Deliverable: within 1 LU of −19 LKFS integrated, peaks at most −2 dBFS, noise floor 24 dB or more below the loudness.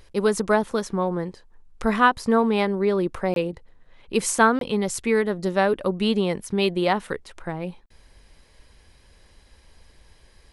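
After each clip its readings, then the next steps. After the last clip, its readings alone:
number of dropouts 2; longest dropout 22 ms; integrated loudness −23.0 LKFS; sample peak −5.0 dBFS; target loudness −19.0 LKFS
→ repair the gap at 0:03.34/0:04.59, 22 ms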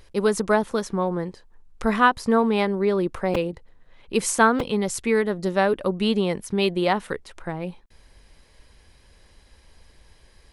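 number of dropouts 0; integrated loudness −23.0 LKFS; sample peak −5.0 dBFS; target loudness −19.0 LKFS
→ level +4 dB
brickwall limiter −2 dBFS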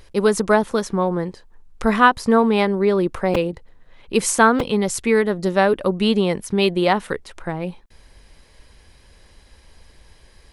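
integrated loudness −19.0 LKFS; sample peak −2.0 dBFS; background noise floor −52 dBFS

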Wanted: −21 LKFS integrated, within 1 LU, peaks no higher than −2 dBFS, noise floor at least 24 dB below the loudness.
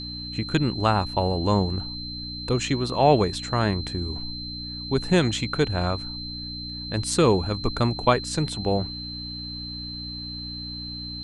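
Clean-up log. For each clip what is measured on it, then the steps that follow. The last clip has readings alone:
mains hum 60 Hz; hum harmonics up to 300 Hz; level of the hum −36 dBFS; interfering tone 4,100 Hz; level of the tone −34 dBFS; integrated loudness −25.5 LKFS; sample peak −5.0 dBFS; target loudness −21.0 LKFS
→ hum removal 60 Hz, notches 5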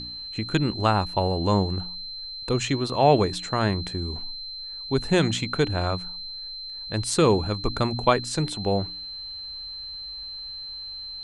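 mains hum none found; interfering tone 4,100 Hz; level of the tone −34 dBFS
→ notch filter 4,100 Hz, Q 30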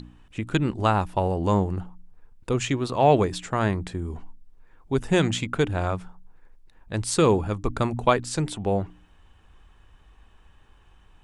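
interfering tone none found; integrated loudness −25.0 LKFS; sample peak −5.0 dBFS; target loudness −21.0 LKFS
→ level +4 dB
brickwall limiter −2 dBFS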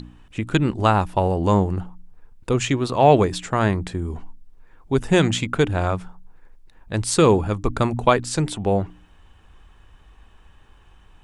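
integrated loudness −21.0 LKFS; sample peak −2.0 dBFS; background noise floor −51 dBFS

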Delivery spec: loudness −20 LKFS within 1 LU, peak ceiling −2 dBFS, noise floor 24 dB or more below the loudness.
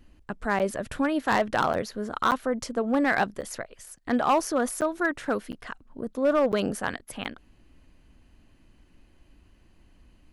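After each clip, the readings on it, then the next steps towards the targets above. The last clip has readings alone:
share of clipped samples 0.6%; peaks flattened at −15.5 dBFS; number of dropouts 8; longest dropout 8.5 ms; integrated loudness −27.0 LKFS; sample peak −15.5 dBFS; target loudness −20.0 LKFS
→ clipped peaks rebuilt −15.5 dBFS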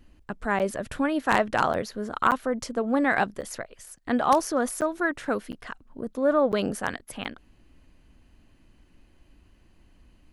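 share of clipped samples 0.0%; number of dropouts 8; longest dropout 8.5 ms
→ repair the gap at 0:00.59/0:01.73/0:02.31/0:03.41/0:04.81/0:05.52/0:06.52/0:07.24, 8.5 ms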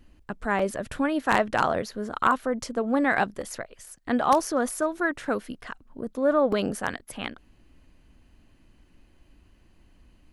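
number of dropouts 0; integrated loudness −26.5 LKFS; sample peak −6.5 dBFS; target loudness −20.0 LKFS
→ level +6.5 dB
brickwall limiter −2 dBFS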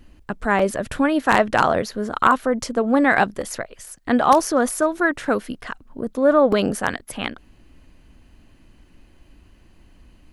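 integrated loudness −20.0 LKFS; sample peak −2.0 dBFS; background noise floor −53 dBFS

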